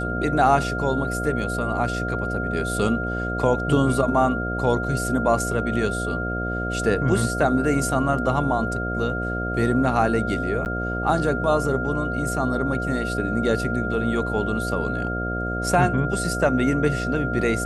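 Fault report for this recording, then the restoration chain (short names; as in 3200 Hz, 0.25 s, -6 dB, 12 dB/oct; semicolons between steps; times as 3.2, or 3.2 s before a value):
buzz 60 Hz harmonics 12 -28 dBFS
tone 1400 Hz -28 dBFS
10.65–10.66 gap 9.2 ms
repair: notch 1400 Hz, Q 30; de-hum 60 Hz, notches 12; interpolate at 10.65, 9.2 ms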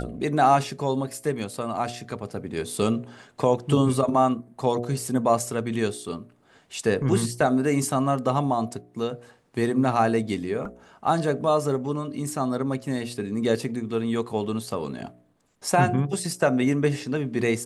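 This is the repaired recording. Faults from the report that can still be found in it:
none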